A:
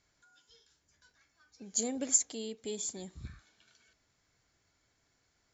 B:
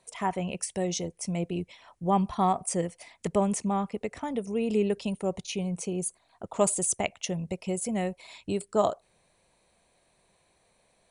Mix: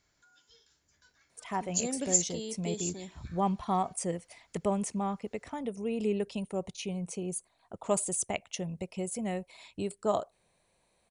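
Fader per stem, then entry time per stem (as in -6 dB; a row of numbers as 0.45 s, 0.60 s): +1.0 dB, -4.5 dB; 0.00 s, 1.30 s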